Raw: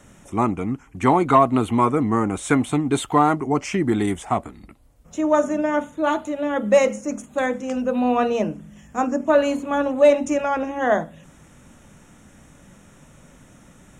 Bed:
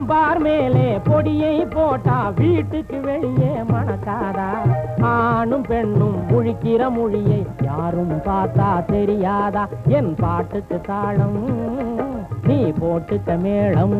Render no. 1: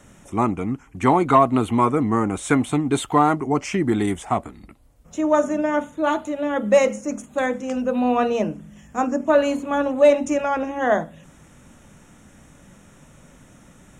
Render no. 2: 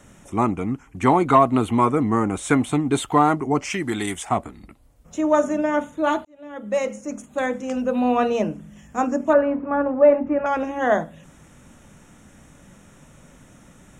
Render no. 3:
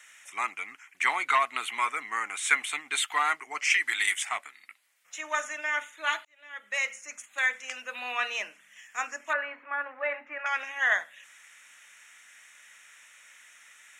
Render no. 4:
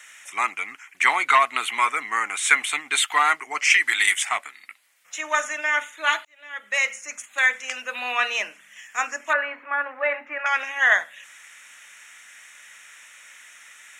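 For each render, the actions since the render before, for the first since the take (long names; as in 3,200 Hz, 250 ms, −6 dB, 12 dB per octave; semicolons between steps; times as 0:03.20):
no processing that can be heard
0:03.70–0:04.29: tilt shelving filter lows −6.5 dB, about 1,200 Hz; 0:06.25–0:08.09: fade in equal-power; 0:09.33–0:10.46: low-pass filter 1,800 Hz 24 dB per octave
high-pass with resonance 2,000 Hz, resonance Q 2.5
level +7 dB; brickwall limiter −3 dBFS, peak gain reduction 1.5 dB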